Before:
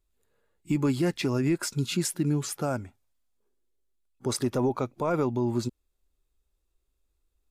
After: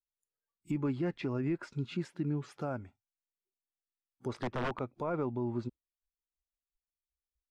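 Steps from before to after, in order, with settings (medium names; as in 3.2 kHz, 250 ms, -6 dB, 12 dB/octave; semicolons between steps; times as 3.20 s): spectral noise reduction 23 dB; 4.34–4.81 s: integer overflow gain 20 dB; low-pass that closes with the level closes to 2.3 kHz, closed at -25.5 dBFS; trim -7.5 dB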